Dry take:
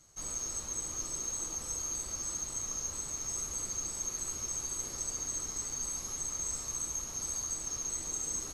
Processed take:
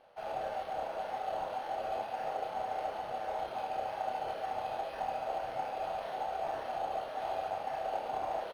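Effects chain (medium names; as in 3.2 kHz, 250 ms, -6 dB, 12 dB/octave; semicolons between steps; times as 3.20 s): Chebyshev high-pass 430 Hz; frequency shift +200 Hz; phaser 2 Hz, delay 3.5 ms, feedback 33%; doubling 29 ms -4 dB; decimation joined by straight lines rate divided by 6×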